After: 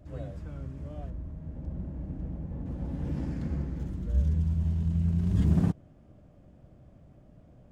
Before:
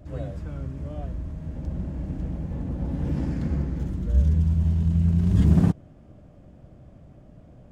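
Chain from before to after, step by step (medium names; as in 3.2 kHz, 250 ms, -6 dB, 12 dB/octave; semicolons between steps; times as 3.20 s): 1.10–2.66 s: treble shelf 2.1 kHz -10.5 dB; trim -6 dB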